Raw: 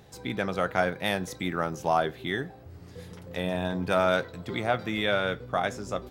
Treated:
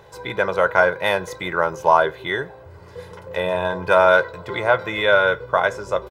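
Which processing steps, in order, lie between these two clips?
parametric band 1,000 Hz +13 dB 2.3 octaves
comb filter 2 ms, depth 68%
level −1 dB

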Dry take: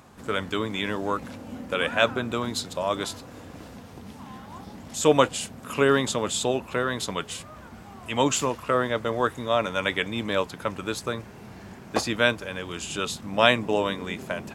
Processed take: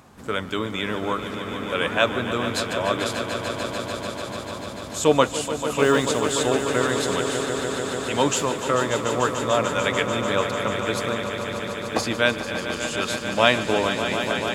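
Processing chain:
0:05.73–0:06.33: noise that follows the level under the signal 34 dB
echo that builds up and dies away 147 ms, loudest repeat 5, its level −11 dB
level +1 dB

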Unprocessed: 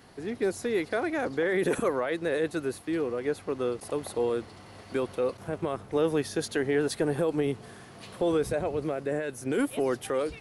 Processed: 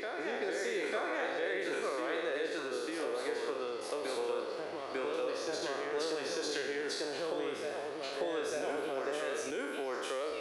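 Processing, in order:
peak hold with a decay on every bin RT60 1.05 s
dynamic equaliser 5,500 Hz, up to +6 dB, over −51 dBFS, Q 0.92
downward compressor 5 to 1, threshold −31 dBFS, peak gain reduction 11.5 dB
three-way crossover with the lows and the highs turned down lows −22 dB, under 330 Hz, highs −12 dB, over 6,600 Hz
on a send: backwards echo 897 ms −3 dB
on the sum: level −1 dB

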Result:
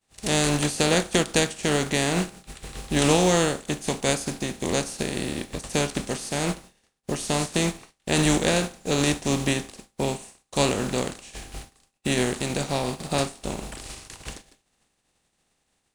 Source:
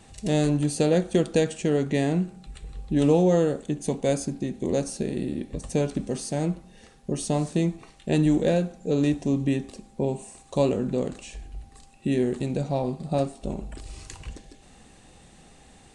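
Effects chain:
compressing power law on the bin magnitudes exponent 0.52
downward expander −38 dBFS

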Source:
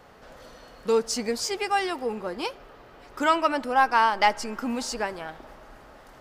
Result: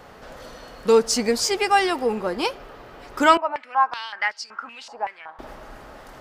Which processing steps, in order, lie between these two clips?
0:03.37–0:05.39: band-pass on a step sequencer 5.3 Hz 810–4,700 Hz
level +6.5 dB

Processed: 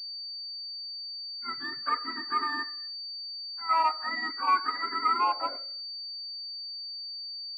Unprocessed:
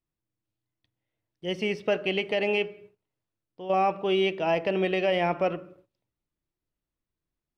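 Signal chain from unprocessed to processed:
frequency axis turned over on the octave scale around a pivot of 860 Hz
band-pass filter sweep 1,200 Hz → 330 Hz, 0:05.11–0:06.15
switching amplifier with a slow clock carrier 4,600 Hz
level +4 dB

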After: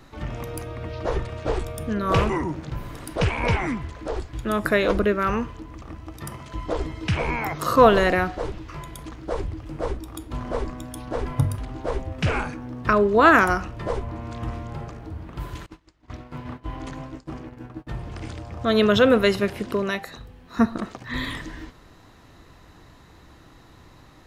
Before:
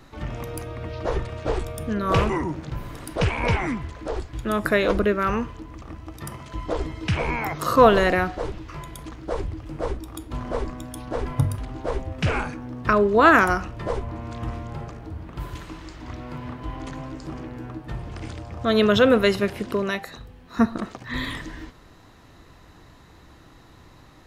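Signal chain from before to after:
0:15.66–0:17.87: noise gate −34 dBFS, range −26 dB

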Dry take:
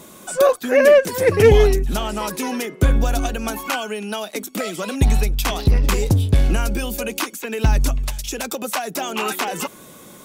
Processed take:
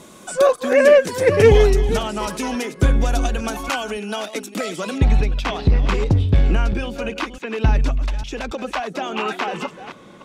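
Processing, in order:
delay that plays each chunk backwards 284 ms, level −12 dB
low-pass filter 8,700 Hz 12 dB per octave, from 0:04.98 3,400 Hz

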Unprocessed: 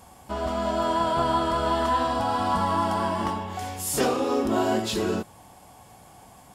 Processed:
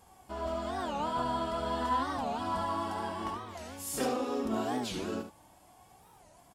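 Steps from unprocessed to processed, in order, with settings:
flanger 0.33 Hz, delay 2.4 ms, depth 2.1 ms, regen +50%
on a send: single-tap delay 72 ms −8 dB
on the sum: wow of a warped record 45 rpm, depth 250 cents
level −5.5 dB

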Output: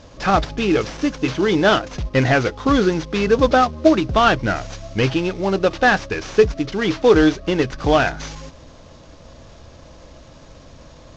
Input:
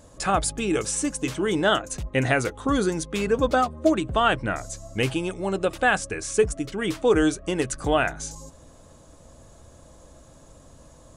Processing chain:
variable-slope delta modulation 32 kbit/s
level +7 dB

